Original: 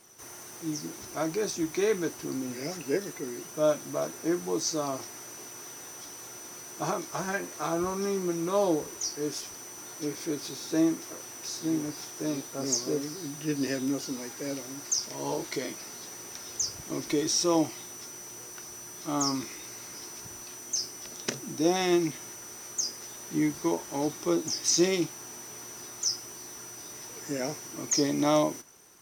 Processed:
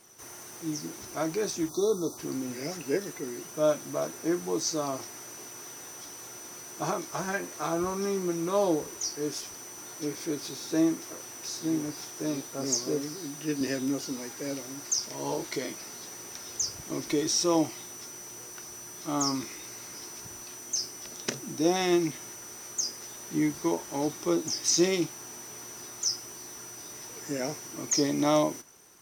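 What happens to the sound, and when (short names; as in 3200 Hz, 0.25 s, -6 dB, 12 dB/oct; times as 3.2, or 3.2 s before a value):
1.69–2.18 spectral delete 1400–3400 Hz
13.18–13.61 HPF 160 Hz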